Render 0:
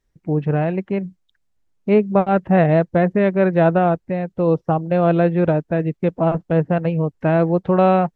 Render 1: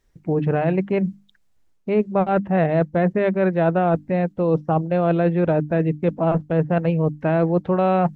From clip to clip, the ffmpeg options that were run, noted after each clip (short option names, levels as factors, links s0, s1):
-af "bandreject=f=50:t=h:w=6,bandreject=f=100:t=h:w=6,bandreject=f=150:t=h:w=6,bandreject=f=200:t=h:w=6,bandreject=f=250:t=h:w=6,bandreject=f=300:t=h:w=6,areverse,acompressor=threshold=0.0631:ratio=4,areverse,volume=2.11"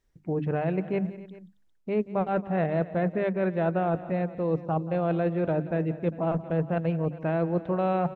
-af "aecho=1:1:179|272|401:0.15|0.112|0.106,volume=0.422"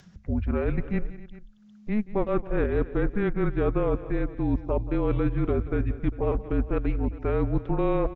-af "aresample=16000,aresample=44100,acompressor=mode=upward:threshold=0.01:ratio=2.5,afreqshift=-210,volume=1.26"